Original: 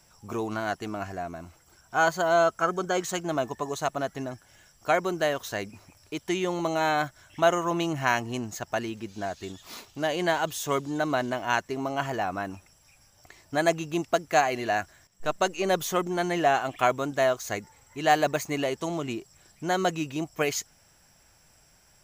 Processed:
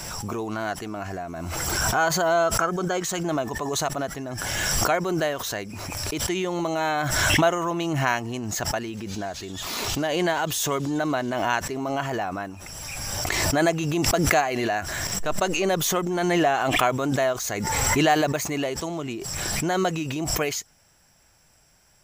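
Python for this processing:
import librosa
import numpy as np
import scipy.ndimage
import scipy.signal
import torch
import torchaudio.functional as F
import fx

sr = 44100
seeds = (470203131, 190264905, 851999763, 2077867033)

y = fx.pre_swell(x, sr, db_per_s=21.0)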